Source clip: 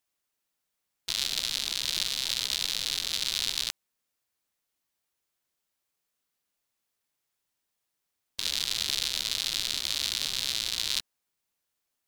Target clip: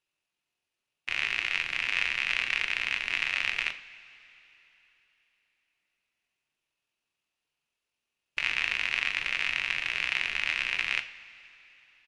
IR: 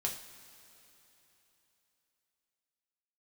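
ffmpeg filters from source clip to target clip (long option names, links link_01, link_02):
-filter_complex "[0:a]equalizer=frequency=630:width_type=o:width=0.33:gain=3,equalizer=frequency=5000:width_type=o:width=0.33:gain=11,equalizer=frequency=16000:width_type=o:width=0.33:gain=-3,asetrate=23361,aresample=44100,atempo=1.88775,asplit=2[link_01][link_02];[1:a]atrim=start_sample=2205,lowpass=6000[link_03];[link_02][link_03]afir=irnorm=-1:irlink=0,volume=-2.5dB[link_04];[link_01][link_04]amix=inputs=2:normalize=0,volume=-8dB"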